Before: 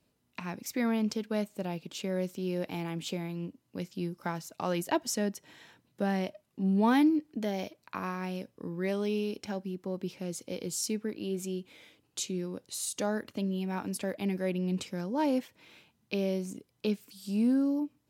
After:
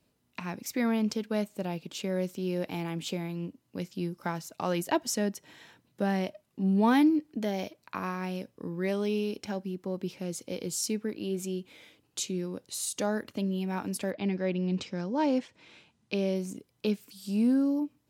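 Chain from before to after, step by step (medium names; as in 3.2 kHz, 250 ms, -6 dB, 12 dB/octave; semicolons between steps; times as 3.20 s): 14.10–16.34 s: low-pass 4.9 kHz -> 11 kHz 24 dB/octave; trim +1.5 dB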